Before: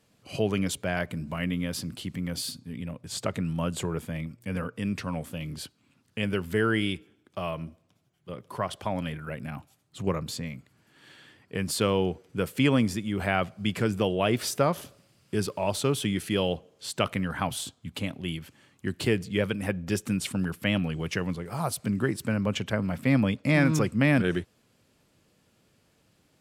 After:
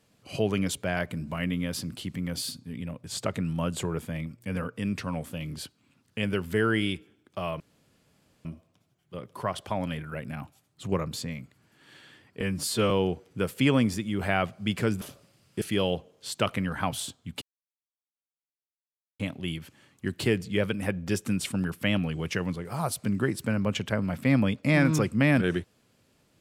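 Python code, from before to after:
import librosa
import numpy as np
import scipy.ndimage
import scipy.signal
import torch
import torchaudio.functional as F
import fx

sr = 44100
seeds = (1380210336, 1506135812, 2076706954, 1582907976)

y = fx.edit(x, sr, fx.insert_room_tone(at_s=7.6, length_s=0.85),
    fx.stretch_span(start_s=11.56, length_s=0.33, factor=1.5),
    fx.cut(start_s=14.0, length_s=0.77),
    fx.cut(start_s=15.37, length_s=0.83),
    fx.insert_silence(at_s=18.0, length_s=1.78), tone=tone)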